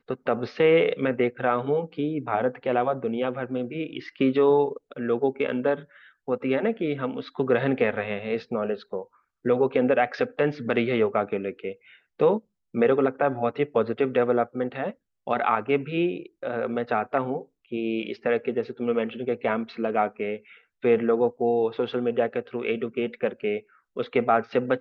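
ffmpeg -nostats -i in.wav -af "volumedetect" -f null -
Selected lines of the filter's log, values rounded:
mean_volume: -25.5 dB
max_volume: -8.8 dB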